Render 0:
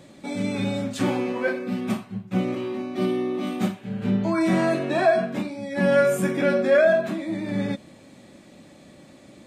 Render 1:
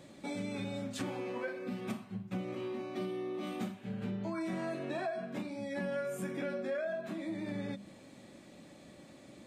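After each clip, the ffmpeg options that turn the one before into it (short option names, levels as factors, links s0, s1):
-af "bandreject=f=50:t=h:w=6,bandreject=f=100:t=h:w=6,bandreject=f=150:t=h:w=6,bandreject=f=200:t=h:w=6,bandreject=f=250:t=h:w=6,acompressor=threshold=0.0316:ratio=5,volume=0.531"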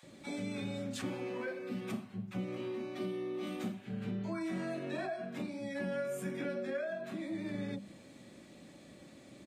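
-filter_complex "[0:a]acrossover=split=850[s0][s1];[s0]adelay=30[s2];[s2][s1]amix=inputs=2:normalize=0"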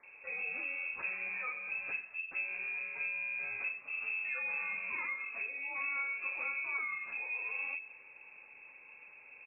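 -af "lowpass=f=2400:t=q:w=0.5098,lowpass=f=2400:t=q:w=0.6013,lowpass=f=2400:t=q:w=0.9,lowpass=f=2400:t=q:w=2.563,afreqshift=-2800"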